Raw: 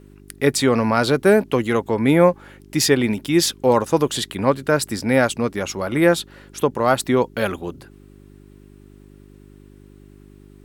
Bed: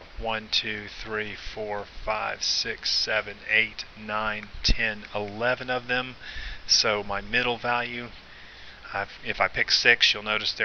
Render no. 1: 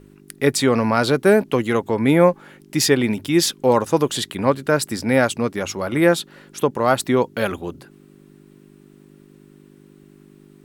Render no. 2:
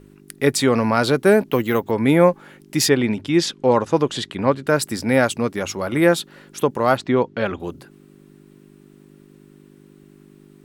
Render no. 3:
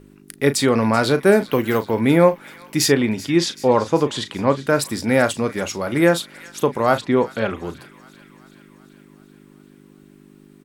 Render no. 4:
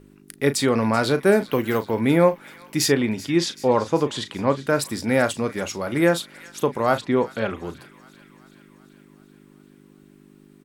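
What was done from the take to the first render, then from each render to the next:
de-hum 50 Hz, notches 2
1.49–1.91 careless resampling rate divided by 3×, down filtered, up hold; 2.89–4.67 air absorption 80 m; 6.97–7.6 air absorption 150 m
doubler 36 ms -12 dB; thin delay 0.384 s, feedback 64%, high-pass 1500 Hz, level -17 dB
gain -3 dB

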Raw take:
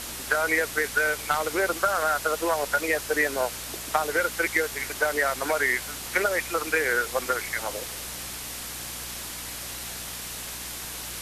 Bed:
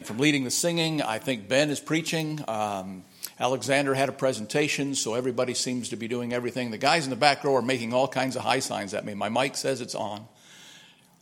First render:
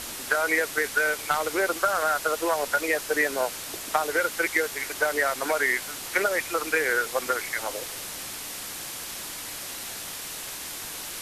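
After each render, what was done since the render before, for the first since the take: de-hum 60 Hz, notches 4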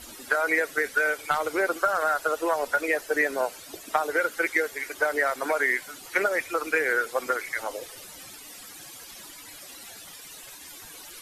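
denoiser 14 dB, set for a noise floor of -37 dBFS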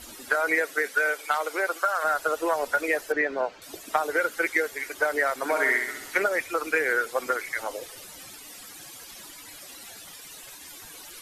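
0.55–2.03 HPF 210 Hz -> 710 Hz; 3.12–3.62 air absorption 190 m; 5.44–6.18 flutter echo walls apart 11.2 m, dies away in 0.73 s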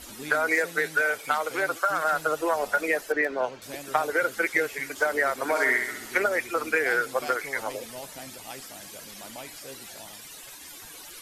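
add bed -17.5 dB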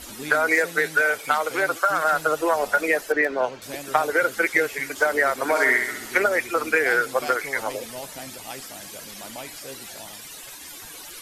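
gain +4 dB

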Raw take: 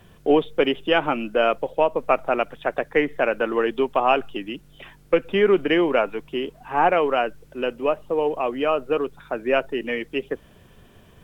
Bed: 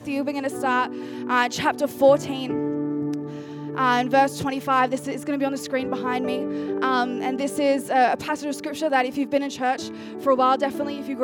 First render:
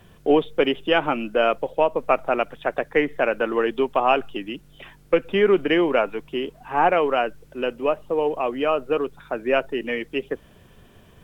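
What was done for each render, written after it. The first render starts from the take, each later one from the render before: nothing audible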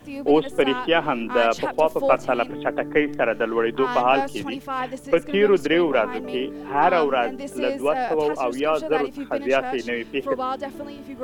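add bed -7.5 dB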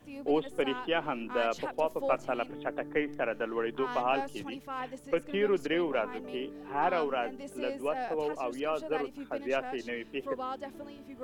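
gain -10.5 dB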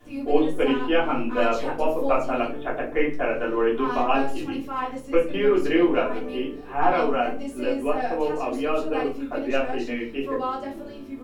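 doubler 22 ms -14 dB; shoebox room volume 190 m³, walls furnished, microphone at 3.2 m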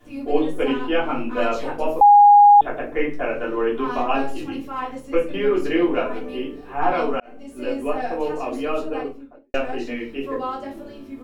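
2.01–2.61 bleep 821 Hz -6.5 dBFS; 7.2–7.74 fade in linear; 8.75–9.54 studio fade out

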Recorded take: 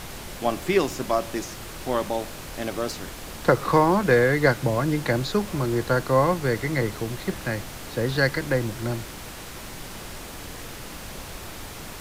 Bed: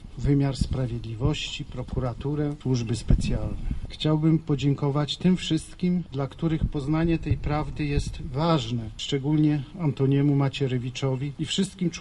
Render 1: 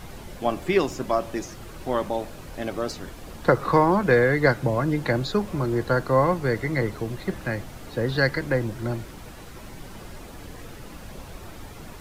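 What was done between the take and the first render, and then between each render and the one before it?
denoiser 9 dB, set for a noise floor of -38 dBFS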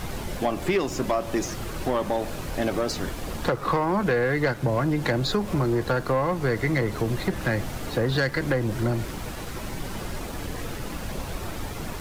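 compressor, threshold -26 dBFS, peak gain reduction 13 dB; sample leveller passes 2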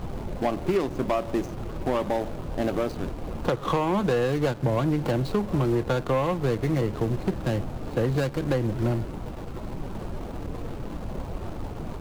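median filter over 25 samples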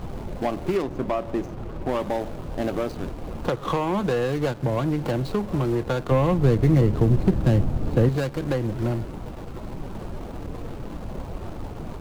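0.82–1.89 high shelf 3500 Hz -8 dB; 6.11–8.09 low shelf 320 Hz +10.5 dB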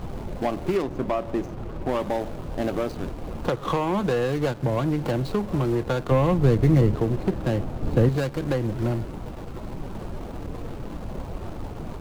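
6.95–7.83 tone controls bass -8 dB, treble -2 dB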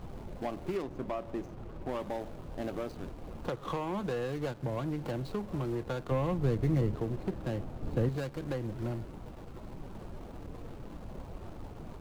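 gain -10.5 dB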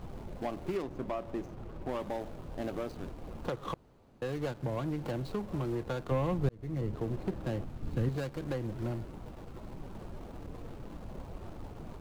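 3.74–4.22 room tone; 6.49–7.1 fade in; 7.64–8.07 bell 580 Hz -7.5 dB 1.6 oct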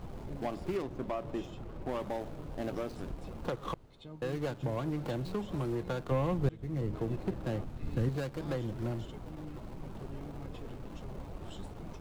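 add bed -25.5 dB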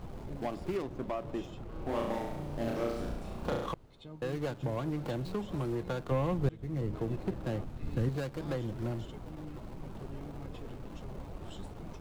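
1.68–3.66 flutter echo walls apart 5.9 m, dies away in 0.85 s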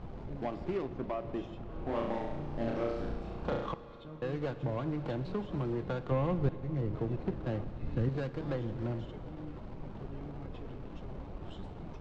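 air absorption 160 m; Schroeder reverb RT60 3.5 s, DRR 12.5 dB

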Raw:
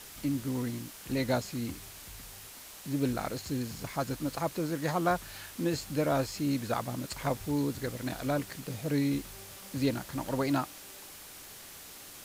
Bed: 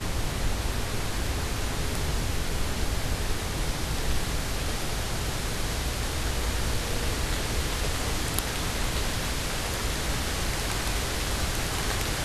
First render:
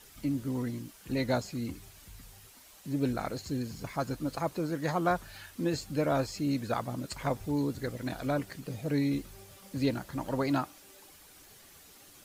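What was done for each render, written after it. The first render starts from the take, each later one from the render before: denoiser 9 dB, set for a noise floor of -48 dBFS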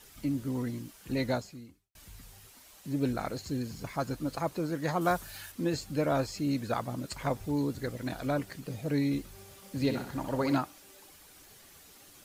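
1.27–1.95 fade out quadratic; 5.01–5.52 high shelf 5700 Hz +10 dB; 9.29–10.58 flutter echo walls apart 10.9 m, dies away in 0.51 s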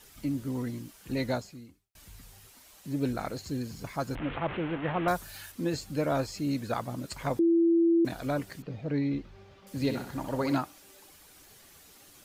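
4.15–5.08 delta modulation 16 kbps, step -31 dBFS; 7.39–8.05 bleep 335 Hz -19.5 dBFS; 8.62–9.67 air absorption 230 m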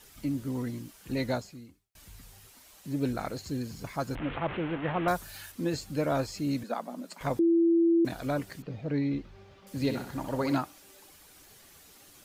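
6.63–7.21 rippled Chebyshev high-pass 170 Hz, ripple 6 dB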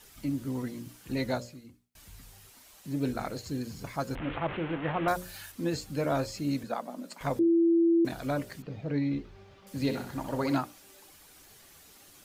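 notches 60/120/180/240/300/360/420/480/540/600 Hz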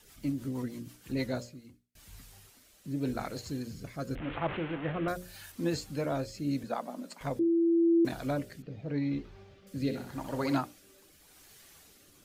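rotary speaker horn 6.3 Hz, later 0.85 Hz, at 1.13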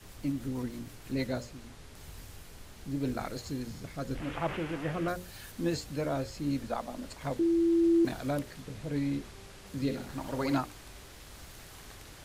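add bed -21.5 dB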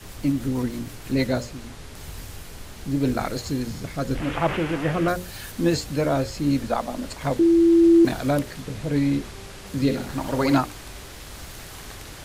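gain +10 dB

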